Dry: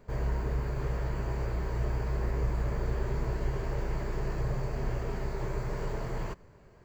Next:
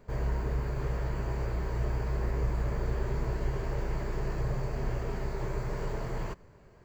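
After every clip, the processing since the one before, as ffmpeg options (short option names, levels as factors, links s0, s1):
-af anull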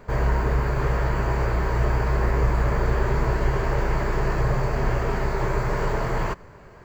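-af "equalizer=f=1300:w=0.65:g=6.5,volume=2.66"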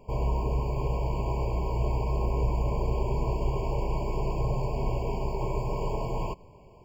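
-af "afftfilt=real='re*eq(mod(floor(b*sr/1024/1100),2),0)':imag='im*eq(mod(floor(b*sr/1024/1100),2),0)':win_size=1024:overlap=0.75,volume=0.531"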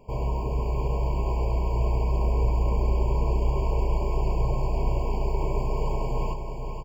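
-af "aecho=1:1:472|944|1416|1888|2360|2832|3304:0.447|0.241|0.13|0.0703|0.038|0.0205|0.0111"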